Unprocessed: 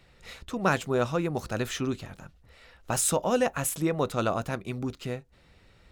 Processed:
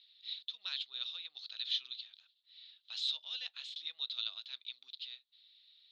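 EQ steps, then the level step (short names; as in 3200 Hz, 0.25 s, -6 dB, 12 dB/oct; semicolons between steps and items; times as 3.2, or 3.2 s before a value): Butterworth band-pass 3800 Hz, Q 4.1; air absorption 140 m; +12.5 dB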